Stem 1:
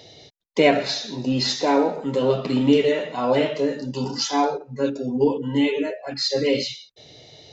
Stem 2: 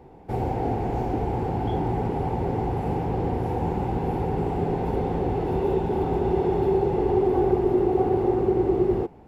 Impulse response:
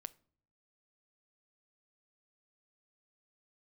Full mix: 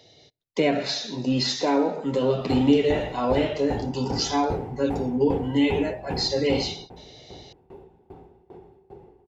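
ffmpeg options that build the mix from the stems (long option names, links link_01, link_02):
-filter_complex "[0:a]acrossover=split=340[link_01][link_02];[link_02]acompressor=threshold=-21dB:ratio=3[link_03];[link_01][link_03]amix=inputs=2:normalize=0,volume=-10dB,asplit=3[link_04][link_05][link_06];[link_05]volume=-6.5dB[link_07];[1:a]acompressor=threshold=-23dB:ratio=6,aeval=exprs='val(0)*pow(10,-23*if(lt(mod(2.5*n/s,1),2*abs(2.5)/1000),1-mod(2.5*n/s,1)/(2*abs(2.5)/1000),(mod(2.5*n/s,1)-2*abs(2.5)/1000)/(1-2*abs(2.5)/1000))/20)':channel_layout=same,adelay=2100,volume=-5dB[link_08];[link_06]apad=whole_len=501523[link_09];[link_08][link_09]sidechaingate=range=-16dB:threshold=-53dB:ratio=16:detection=peak[link_10];[2:a]atrim=start_sample=2205[link_11];[link_07][link_11]afir=irnorm=-1:irlink=0[link_12];[link_04][link_10][link_12]amix=inputs=3:normalize=0,dynaudnorm=framelen=340:gausssize=3:maxgain=7dB"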